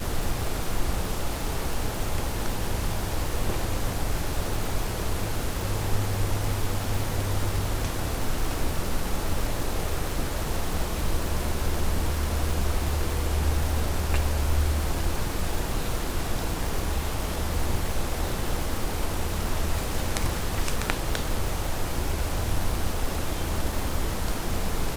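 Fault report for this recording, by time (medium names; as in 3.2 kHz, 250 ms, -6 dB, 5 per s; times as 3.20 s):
crackle 360 per s -30 dBFS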